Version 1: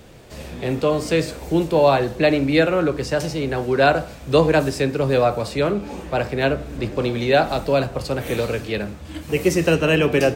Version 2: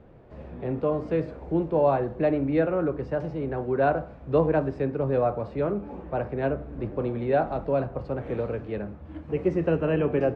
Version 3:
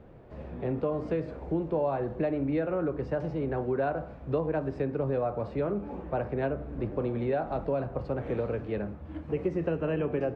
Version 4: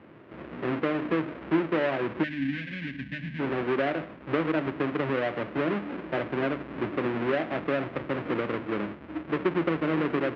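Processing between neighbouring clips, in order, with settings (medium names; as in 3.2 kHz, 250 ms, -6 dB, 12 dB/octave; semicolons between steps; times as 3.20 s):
low-pass 1.2 kHz 12 dB/octave; trim -6 dB
compression 6:1, threshold -25 dBFS, peak gain reduction 9.5 dB
square wave that keeps the level; time-frequency box 2.23–3.40 s, 290–1500 Hz -24 dB; cabinet simulation 200–2600 Hz, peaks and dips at 320 Hz +6 dB, 460 Hz -4 dB, 800 Hz -5 dB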